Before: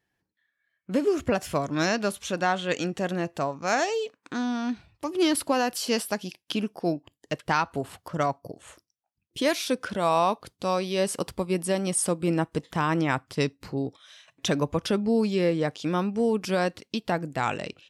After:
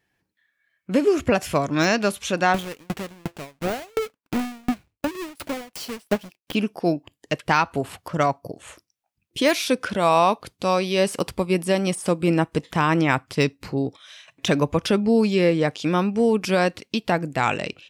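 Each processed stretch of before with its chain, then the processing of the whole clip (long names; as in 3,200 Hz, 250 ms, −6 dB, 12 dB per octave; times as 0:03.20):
0:02.54–0:06.55: each half-wave held at its own peak + tremolo with a ramp in dB decaying 2.8 Hz, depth 39 dB
whole clip: parametric band 2,400 Hz +4 dB 0.52 octaves; de-essing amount 60%; level +5 dB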